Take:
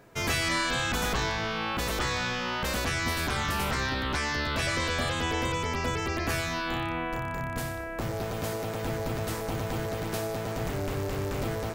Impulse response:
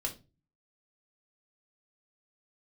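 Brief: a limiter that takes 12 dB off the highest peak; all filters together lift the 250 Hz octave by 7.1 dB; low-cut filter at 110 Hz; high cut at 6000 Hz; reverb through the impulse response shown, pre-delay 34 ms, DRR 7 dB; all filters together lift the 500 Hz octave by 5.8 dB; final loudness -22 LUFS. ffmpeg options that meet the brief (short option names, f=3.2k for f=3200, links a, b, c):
-filter_complex "[0:a]highpass=110,lowpass=6k,equalizer=f=250:t=o:g=8,equalizer=f=500:t=o:g=5,alimiter=level_in=1.5dB:limit=-24dB:level=0:latency=1,volume=-1.5dB,asplit=2[a][b];[1:a]atrim=start_sample=2205,adelay=34[c];[b][c]afir=irnorm=-1:irlink=0,volume=-9dB[d];[a][d]amix=inputs=2:normalize=0,volume=10dB"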